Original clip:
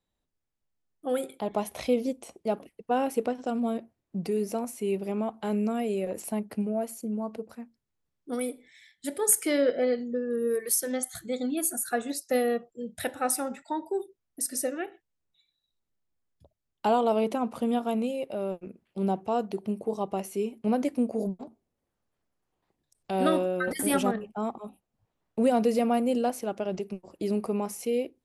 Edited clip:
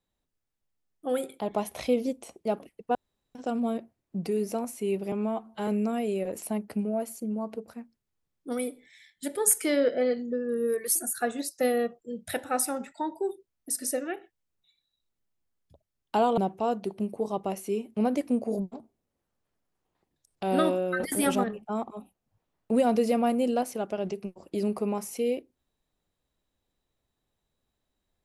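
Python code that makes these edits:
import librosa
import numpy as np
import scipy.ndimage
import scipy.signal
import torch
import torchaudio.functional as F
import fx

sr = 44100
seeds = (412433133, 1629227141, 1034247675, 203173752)

y = fx.edit(x, sr, fx.room_tone_fill(start_s=2.95, length_s=0.4),
    fx.stretch_span(start_s=5.12, length_s=0.37, factor=1.5),
    fx.cut(start_s=10.77, length_s=0.89),
    fx.cut(start_s=17.08, length_s=1.97), tone=tone)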